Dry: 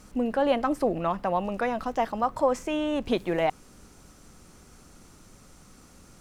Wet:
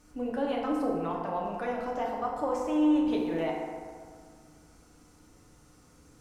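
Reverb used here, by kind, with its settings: FDN reverb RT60 1.9 s, low-frequency decay 0.95×, high-frequency decay 0.5×, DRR -3 dB; trim -10.5 dB

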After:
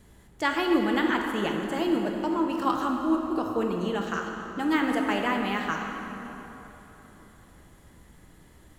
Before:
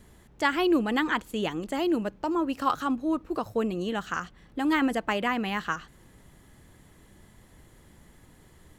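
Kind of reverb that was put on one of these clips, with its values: plate-style reverb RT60 3.6 s, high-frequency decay 0.65×, DRR 1.5 dB; trim -1.5 dB

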